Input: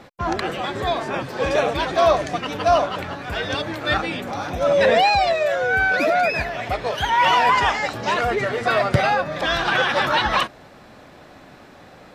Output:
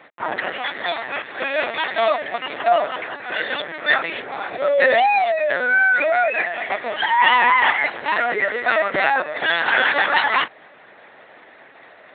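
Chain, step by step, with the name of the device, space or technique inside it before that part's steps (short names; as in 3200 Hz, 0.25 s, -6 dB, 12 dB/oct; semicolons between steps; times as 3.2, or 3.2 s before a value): 0.61–2.23 tilt shelf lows -4.5 dB, about 1400 Hz; talking toy (LPC vocoder at 8 kHz pitch kept; HPF 370 Hz 12 dB/oct; bell 1900 Hz +9 dB 0.47 oct)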